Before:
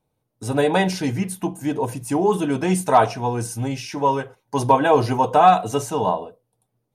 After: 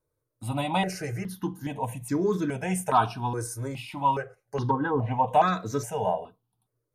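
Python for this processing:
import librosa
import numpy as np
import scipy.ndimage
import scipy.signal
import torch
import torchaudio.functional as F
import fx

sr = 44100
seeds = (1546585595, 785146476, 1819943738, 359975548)

y = fx.env_lowpass_down(x, sr, base_hz=790.0, full_db=-11.5, at=(4.15, 5.28))
y = fx.phaser_held(y, sr, hz=2.4, low_hz=780.0, high_hz=2900.0)
y = y * librosa.db_to_amplitude(-3.0)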